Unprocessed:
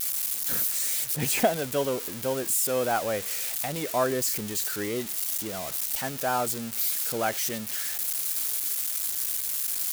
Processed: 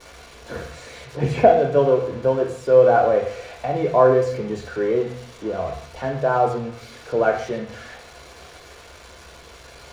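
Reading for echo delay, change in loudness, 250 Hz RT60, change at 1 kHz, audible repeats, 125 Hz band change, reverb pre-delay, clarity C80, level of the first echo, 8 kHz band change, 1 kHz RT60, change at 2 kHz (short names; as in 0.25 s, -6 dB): none, +6.5 dB, 0.65 s, +9.0 dB, none, +10.5 dB, 3 ms, 10.0 dB, none, under -15 dB, 0.60 s, +3.0 dB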